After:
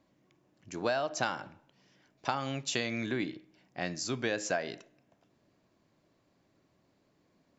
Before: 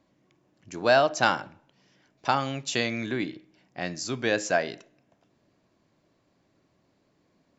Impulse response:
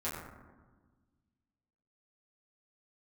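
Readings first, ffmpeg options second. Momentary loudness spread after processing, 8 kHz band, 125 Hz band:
14 LU, n/a, -4.5 dB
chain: -af "acompressor=threshold=-24dB:ratio=12,volume=-2.5dB"

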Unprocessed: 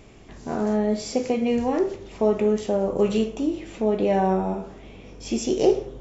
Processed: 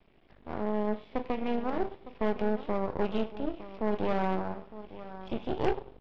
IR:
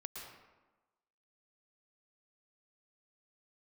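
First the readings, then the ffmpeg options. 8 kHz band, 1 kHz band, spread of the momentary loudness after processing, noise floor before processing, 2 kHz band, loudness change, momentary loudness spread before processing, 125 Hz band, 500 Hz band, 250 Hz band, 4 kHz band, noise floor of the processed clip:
n/a, -5.0 dB, 12 LU, -45 dBFS, -3.0 dB, -9.0 dB, 9 LU, -7.5 dB, -10.0 dB, -9.0 dB, -10.5 dB, -61 dBFS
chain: -af "equalizer=f=89:t=o:w=1:g=-7.5,aresample=8000,aresample=44100,aresample=11025,aeval=exprs='max(val(0),0)':c=same,aresample=44100,aecho=1:1:908:0.237,aeval=exprs='0.422*(cos(1*acos(clip(val(0)/0.422,-1,1)))-cos(1*PI/2))+0.106*(cos(3*acos(clip(val(0)/0.422,-1,1)))-cos(3*PI/2))+0.0266*(cos(5*acos(clip(val(0)/0.422,-1,1)))-cos(5*PI/2))+0.0596*(cos(6*acos(clip(val(0)/0.422,-1,1)))-cos(6*PI/2))':c=same,volume=-6dB"

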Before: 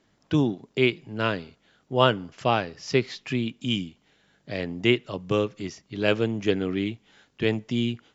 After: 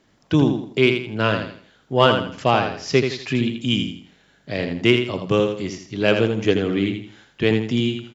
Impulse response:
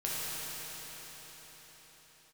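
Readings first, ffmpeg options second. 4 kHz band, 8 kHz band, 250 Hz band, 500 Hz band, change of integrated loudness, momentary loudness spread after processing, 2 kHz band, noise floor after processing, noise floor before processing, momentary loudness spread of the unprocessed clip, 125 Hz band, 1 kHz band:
+5.5 dB, n/a, +5.5 dB, +5.5 dB, +5.5 dB, 9 LU, +5.5 dB, -59 dBFS, -67 dBFS, 9 LU, +6.0 dB, +5.5 dB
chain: -af "acontrast=31,aecho=1:1:82|164|246|328:0.473|0.156|0.0515|0.017"

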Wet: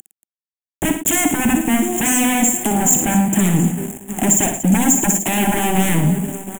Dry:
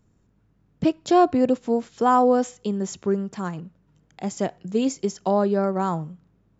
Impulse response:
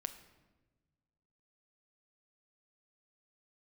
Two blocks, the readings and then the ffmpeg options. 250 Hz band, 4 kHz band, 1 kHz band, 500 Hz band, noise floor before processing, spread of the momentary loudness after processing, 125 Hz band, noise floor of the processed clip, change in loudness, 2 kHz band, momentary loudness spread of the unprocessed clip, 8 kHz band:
+7.5 dB, +12.0 dB, +1.0 dB, -3.0 dB, -64 dBFS, 7 LU, +12.5 dB, under -85 dBFS, +7.0 dB, +15.0 dB, 13 LU, n/a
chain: -filter_complex "[0:a]acompressor=threshold=-31dB:ratio=2,highpass=42,asplit=2[a][b];[b]aecho=0:1:713|1426|2139:0.0891|0.0392|0.0173[c];[a][c]amix=inputs=2:normalize=0,aeval=exprs='0.0224*(abs(mod(val(0)/0.0224+3,4)-2)-1)':c=same,equalizer=f=310:t=o:w=1.2:g=4,acompressor=mode=upward:threshold=-56dB:ratio=2.5,aeval=exprs='val(0)*gte(abs(val(0)),0.00501)':c=same,firequalizer=gain_entry='entry(110,0);entry(220,7);entry(320,6);entry(460,-7);entry(780,2);entry(1200,-11);entry(1700,-1);entry(3100,0);entry(4600,-27);entry(7100,14)':delay=0.05:min_phase=1,asplit=2[d][e];[e]aecho=0:1:59|109|231:0.422|0.251|0.188[f];[d][f]amix=inputs=2:normalize=0,alimiter=level_in=18.5dB:limit=-1dB:release=50:level=0:latency=1,volume=-1dB"

